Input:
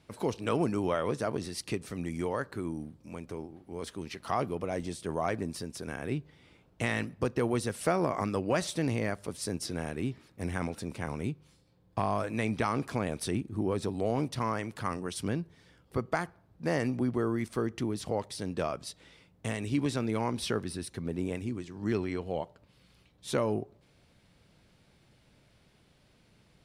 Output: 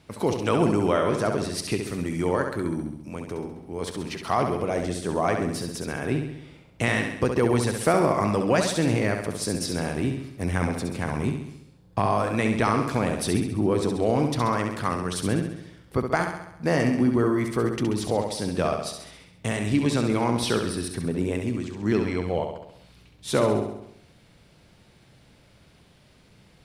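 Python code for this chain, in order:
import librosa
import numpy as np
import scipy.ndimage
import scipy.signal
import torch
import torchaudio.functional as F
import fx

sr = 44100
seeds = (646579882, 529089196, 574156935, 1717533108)

y = fx.echo_feedback(x, sr, ms=67, feedback_pct=56, wet_db=-6.0)
y = F.gain(torch.from_numpy(y), 6.5).numpy()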